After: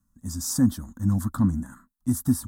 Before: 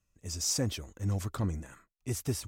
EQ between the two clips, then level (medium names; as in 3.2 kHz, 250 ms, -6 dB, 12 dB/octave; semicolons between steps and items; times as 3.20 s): FFT filter 140 Hz 0 dB, 250 Hz +13 dB, 400 Hz -18 dB, 1 kHz +1 dB, 1.7 kHz -3 dB, 2.4 kHz -28 dB, 3.6 kHz -9 dB, 5.8 kHz -9 dB, 10 kHz +3 dB; +6.0 dB